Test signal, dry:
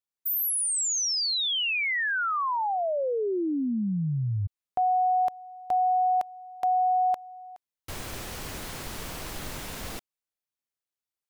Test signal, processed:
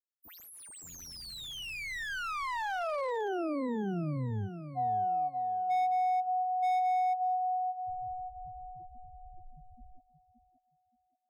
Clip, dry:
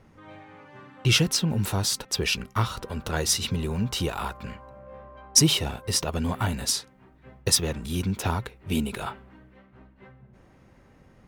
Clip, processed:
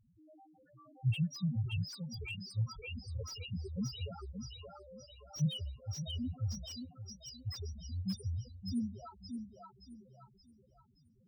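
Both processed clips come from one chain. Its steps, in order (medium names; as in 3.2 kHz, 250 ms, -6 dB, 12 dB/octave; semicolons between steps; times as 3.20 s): loudest bins only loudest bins 1; thinning echo 574 ms, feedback 45%, high-pass 290 Hz, level -3 dB; slew-rate limiter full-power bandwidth 47 Hz; trim -3 dB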